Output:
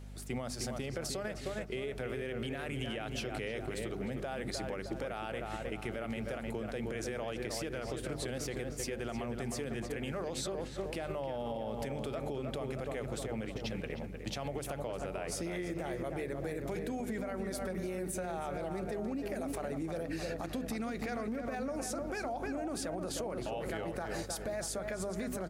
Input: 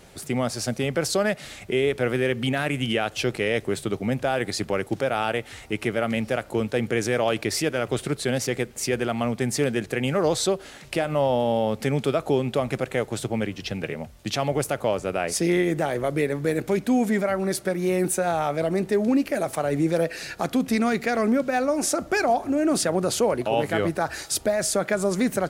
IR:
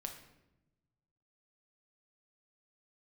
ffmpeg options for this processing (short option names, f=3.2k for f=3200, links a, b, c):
-filter_complex "[0:a]bandreject=f=50:t=h:w=6,bandreject=f=100:t=h:w=6,bandreject=f=150:t=h:w=6,bandreject=f=200:t=h:w=6,bandreject=f=250:t=h:w=6,bandreject=f=300:t=h:w=6,bandreject=f=350:t=h:w=6,bandreject=f=400:t=h:w=6,asplit=2[a][b];[b]adelay=308,lowpass=f=2k:p=1,volume=-6dB,asplit=2[c][d];[d]adelay=308,lowpass=f=2k:p=1,volume=0.54,asplit=2[e][f];[f]adelay=308,lowpass=f=2k:p=1,volume=0.54,asplit=2[g][h];[h]adelay=308,lowpass=f=2k:p=1,volume=0.54,asplit=2[i][j];[j]adelay=308,lowpass=f=2k:p=1,volume=0.54,asplit=2[k][l];[l]adelay=308,lowpass=f=2k:p=1,volume=0.54,asplit=2[m][n];[n]adelay=308,lowpass=f=2k:p=1,volume=0.54[o];[c][e][g][i][k][m][o]amix=inputs=7:normalize=0[p];[a][p]amix=inputs=2:normalize=0,aeval=exprs='val(0)+0.0178*(sin(2*PI*50*n/s)+sin(2*PI*2*50*n/s)/2+sin(2*PI*3*50*n/s)/3+sin(2*PI*4*50*n/s)/4+sin(2*PI*5*50*n/s)/5)':c=same,agate=range=-7dB:threshold=-28dB:ratio=16:detection=peak,alimiter=limit=-20.5dB:level=0:latency=1:release=116,acompressor=threshold=-30dB:ratio=6,volume=-4dB"